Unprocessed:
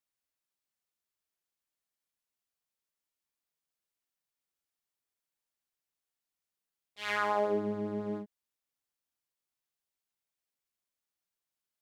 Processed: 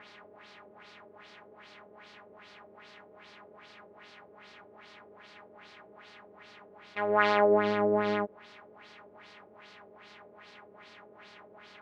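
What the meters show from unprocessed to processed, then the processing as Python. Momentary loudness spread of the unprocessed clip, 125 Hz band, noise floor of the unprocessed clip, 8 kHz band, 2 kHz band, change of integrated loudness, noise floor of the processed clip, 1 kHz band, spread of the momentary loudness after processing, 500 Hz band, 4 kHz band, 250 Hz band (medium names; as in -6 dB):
12 LU, +3.0 dB, under -85 dBFS, no reading, +6.0 dB, +6.0 dB, -56 dBFS, +6.5 dB, 13 LU, +8.0 dB, +5.0 dB, +3.5 dB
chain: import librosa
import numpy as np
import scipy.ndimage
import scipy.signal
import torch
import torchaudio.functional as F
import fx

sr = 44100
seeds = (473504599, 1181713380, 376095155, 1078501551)

y = fx.bin_compress(x, sr, power=0.4)
y = fx.filter_lfo_lowpass(y, sr, shape='sine', hz=2.5, low_hz=460.0, high_hz=4800.0, q=2.5)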